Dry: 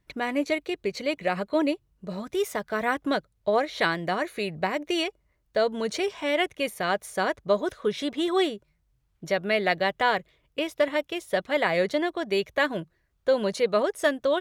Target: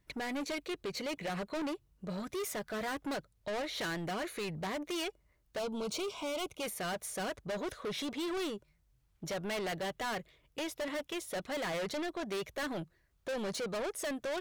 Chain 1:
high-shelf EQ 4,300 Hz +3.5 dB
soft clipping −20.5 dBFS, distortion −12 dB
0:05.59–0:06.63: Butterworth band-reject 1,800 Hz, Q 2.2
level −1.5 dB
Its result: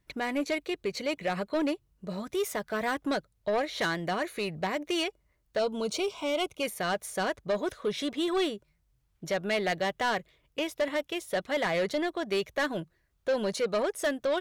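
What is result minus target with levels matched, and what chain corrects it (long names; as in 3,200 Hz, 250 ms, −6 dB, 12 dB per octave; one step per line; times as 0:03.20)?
soft clipping: distortion −8 dB
high-shelf EQ 4,300 Hz +3.5 dB
soft clipping −32.5 dBFS, distortion −4 dB
0:05.59–0:06.63: Butterworth band-reject 1,800 Hz, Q 2.2
level −1.5 dB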